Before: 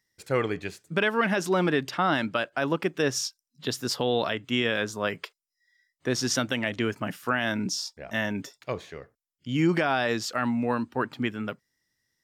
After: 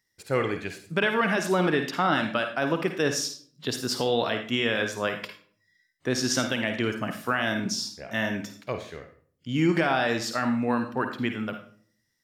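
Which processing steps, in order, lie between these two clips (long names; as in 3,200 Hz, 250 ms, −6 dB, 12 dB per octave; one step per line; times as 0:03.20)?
on a send: low-shelf EQ 490 Hz −8.5 dB + convolution reverb RT60 0.50 s, pre-delay 51 ms, DRR 6 dB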